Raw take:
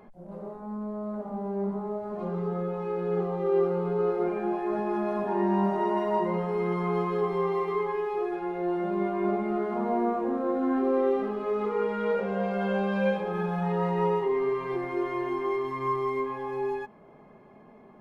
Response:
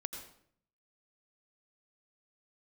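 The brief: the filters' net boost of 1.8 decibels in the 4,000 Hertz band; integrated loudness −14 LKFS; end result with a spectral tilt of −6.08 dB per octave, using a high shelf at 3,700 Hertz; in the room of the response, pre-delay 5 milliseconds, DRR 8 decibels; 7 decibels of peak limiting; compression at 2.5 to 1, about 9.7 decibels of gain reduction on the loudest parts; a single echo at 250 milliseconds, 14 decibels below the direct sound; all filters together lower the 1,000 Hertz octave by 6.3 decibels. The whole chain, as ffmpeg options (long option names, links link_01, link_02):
-filter_complex "[0:a]equalizer=frequency=1000:width_type=o:gain=-8,highshelf=frequency=3700:gain=-6,equalizer=frequency=4000:width_type=o:gain=7,acompressor=threshold=-37dB:ratio=2.5,alimiter=level_in=8.5dB:limit=-24dB:level=0:latency=1,volume=-8.5dB,aecho=1:1:250:0.2,asplit=2[link_01][link_02];[1:a]atrim=start_sample=2205,adelay=5[link_03];[link_02][link_03]afir=irnorm=-1:irlink=0,volume=-7dB[link_04];[link_01][link_04]amix=inputs=2:normalize=0,volume=23.5dB"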